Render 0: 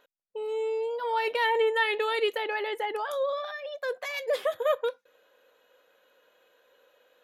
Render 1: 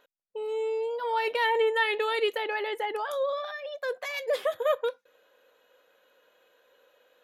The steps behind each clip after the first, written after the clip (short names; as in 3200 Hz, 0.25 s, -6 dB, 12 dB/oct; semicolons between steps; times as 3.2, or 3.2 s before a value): nothing audible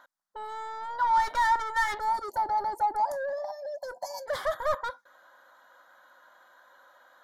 spectral gain 1.99–4.27, 1000–4200 Hz -28 dB; overdrive pedal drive 21 dB, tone 2200 Hz, clips at -13.5 dBFS; fixed phaser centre 1100 Hz, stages 4